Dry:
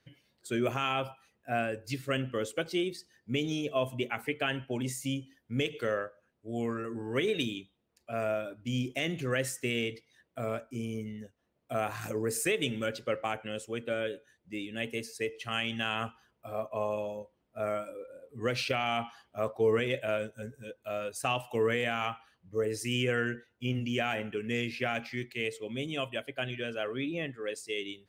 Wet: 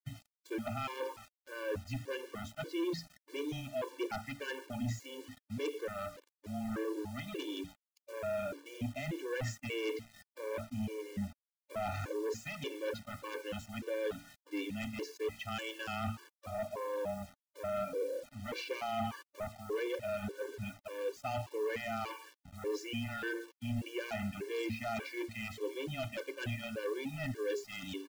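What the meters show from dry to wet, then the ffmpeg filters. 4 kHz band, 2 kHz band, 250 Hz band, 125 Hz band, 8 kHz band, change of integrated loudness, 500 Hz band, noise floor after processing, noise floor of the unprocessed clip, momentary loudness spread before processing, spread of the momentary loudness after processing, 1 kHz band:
-9.0 dB, -8.0 dB, -5.0 dB, -5.0 dB, -9.0 dB, -6.5 dB, -5.5 dB, under -85 dBFS, -76 dBFS, 11 LU, 7 LU, -6.0 dB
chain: -af "highshelf=f=3.5k:g=-11.5,bandreject=f=60:t=h:w=6,bandreject=f=120:t=h:w=6,bandreject=f=180:t=h:w=6,bandreject=f=240:t=h:w=6,bandreject=f=300:t=h:w=6,bandreject=f=360:t=h:w=6,bandreject=f=420:t=h:w=6,areverse,acompressor=threshold=-42dB:ratio=10,areverse,afreqshift=-13,aresample=16000,aeval=exprs='0.0237*sin(PI/2*2*val(0)/0.0237)':c=same,aresample=44100,acrusher=bits=8:mix=0:aa=0.000001,afftfilt=real='re*gt(sin(2*PI*1.7*pts/sr)*(1-2*mod(floor(b*sr/1024/300),2)),0)':imag='im*gt(sin(2*PI*1.7*pts/sr)*(1-2*mod(floor(b*sr/1024/300),2)),0)':win_size=1024:overlap=0.75,volume=2.5dB"

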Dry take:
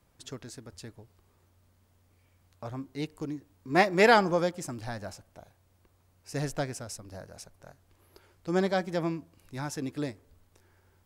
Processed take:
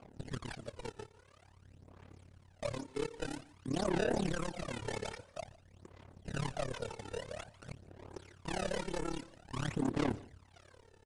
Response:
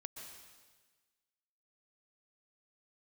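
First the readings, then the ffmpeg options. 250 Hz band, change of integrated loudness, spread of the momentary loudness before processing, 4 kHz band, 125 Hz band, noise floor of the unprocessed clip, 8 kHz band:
-6.0 dB, -10.0 dB, 23 LU, -6.5 dB, -4.0 dB, -67 dBFS, -5.5 dB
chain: -filter_complex "[0:a]highpass=110,highshelf=f=8.1k:g=4.5,acrossover=split=1300[a][b];[a]alimiter=limit=-21.5dB:level=0:latency=1:release=104[c];[b]acompressor=threshold=-48dB:ratio=12[d];[c][d]amix=inputs=2:normalize=0,acrusher=samples=23:mix=1:aa=0.000001:lfo=1:lforange=36.8:lforate=1.3,asoftclip=type=tanh:threshold=-38.5dB,aphaser=in_gain=1:out_gain=1:delay=2.3:decay=0.7:speed=0.5:type=sinusoidal,asoftclip=type=hard:threshold=-34dB,tremolo=f=35:d=0.919,aecho=1:1:155:0.0794,aresample=22050,aresample=44100,volume=7dB"

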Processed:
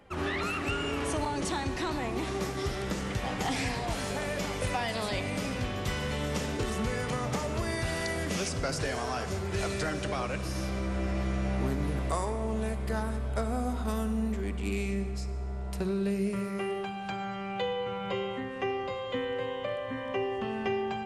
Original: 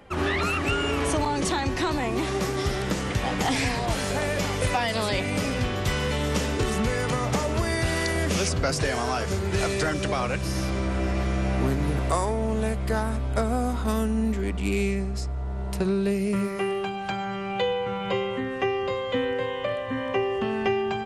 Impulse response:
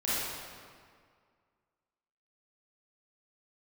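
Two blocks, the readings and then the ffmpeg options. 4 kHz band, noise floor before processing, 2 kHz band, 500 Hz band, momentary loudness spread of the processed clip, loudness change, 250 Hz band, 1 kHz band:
-6.5 dB, -31 dBFS, -6.5 dB, -6.5 dB, 3 LU, -6.0 dB, -5.5 dB, -6.0 dB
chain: -filter_complex "[0:a]asplit=2[a][b];[1:a]atrim=start_sample=2205,asetrate=33075,aresample=44100[c];[b][c]afir=irnorm=-1:irlink=0,volume=-20dB[d];[a][d]amix=inputs=2:normalize=0,volume=-7.5dB"

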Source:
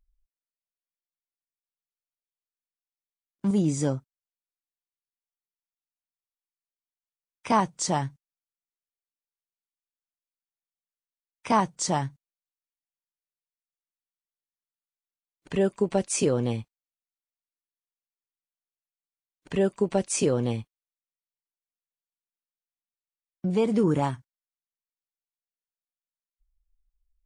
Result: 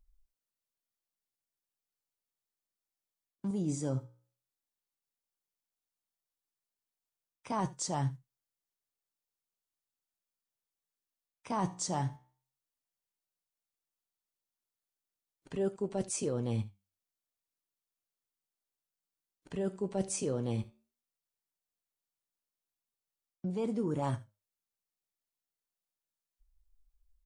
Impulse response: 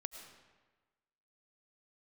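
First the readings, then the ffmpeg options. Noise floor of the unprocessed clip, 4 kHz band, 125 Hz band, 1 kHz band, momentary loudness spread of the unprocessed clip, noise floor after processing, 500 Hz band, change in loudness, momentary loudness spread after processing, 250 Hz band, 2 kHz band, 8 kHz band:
under -85 dBFS, -9.5 dB, -6.0 dB, -10.5 dB, 11 LU, under -85 dBFS, -10.0 dB, -9.0 dB, 8 LU, -9.0 dB, -12.5 dB, -7.5 dB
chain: -af "equalizer=f=2.2k:w=0.86:g=-5,areverse,acompressor=threshold=-33dB:ratio=10,areverse,flanger=delay=7.5:depth=9.1:regen=79:speed=0.13:shape=sinusoidal,aecho=1:1:76:0.106,volume=7.5dB"

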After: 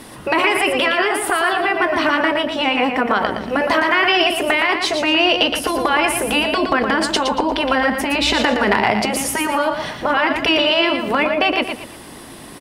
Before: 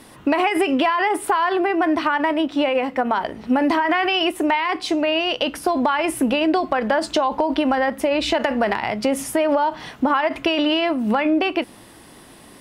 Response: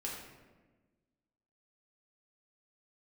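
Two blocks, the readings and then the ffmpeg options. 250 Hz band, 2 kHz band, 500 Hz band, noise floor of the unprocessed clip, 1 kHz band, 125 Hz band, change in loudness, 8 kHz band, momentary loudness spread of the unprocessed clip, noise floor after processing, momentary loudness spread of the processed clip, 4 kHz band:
-1.0 dB, +7.0 dB, +2.0 dB, -45 dBFS, +2.0 dB, +5.5 dB, +3.5 dB, +8.0 dB, 4 LU, -37 dBFS, 6 LU, +7.0 dB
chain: -af "afftfilt=real='re*lt(hypot(re,im),0.708)':imag='im*lt(hypot(re,im),0.708)':win_size=1024:overlap=0.75,aecho=1:1:116|232|348|464:0.473|0.156|0.0515|0.017,volume=7dB"

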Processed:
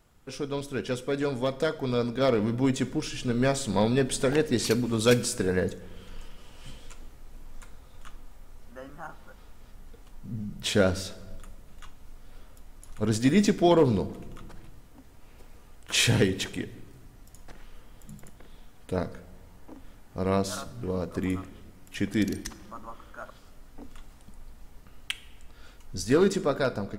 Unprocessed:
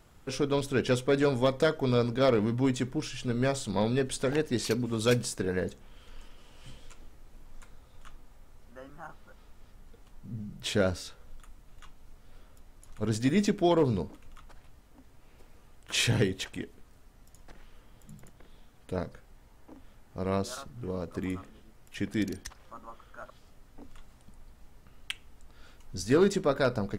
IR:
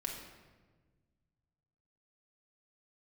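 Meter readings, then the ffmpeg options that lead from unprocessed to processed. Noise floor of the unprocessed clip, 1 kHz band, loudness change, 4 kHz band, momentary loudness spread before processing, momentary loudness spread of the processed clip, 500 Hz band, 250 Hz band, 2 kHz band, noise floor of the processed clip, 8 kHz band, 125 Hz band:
-57 dBFS, +2.0 dB, +2.5 dB, +3.5 dB, 20 LU, 21 LU, +2.0 dB, +3.0 dB, +2.5 dB, -51 dBFS, +4.5 dB, +2.0 dB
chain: -filter_complex "[0:a]dynaudnorm=f=960:g=5:m=8.5dB,asplit=2[a][b];[1:a]atrim=start_sample=2205,highshelf=f=5.9k:g=10.5[c];[b][c]afir=irnorm=-1:irlink=0,volume=-12dB[d];[a][d]amix=inputs=2:normalize=0,volume=-6dB"

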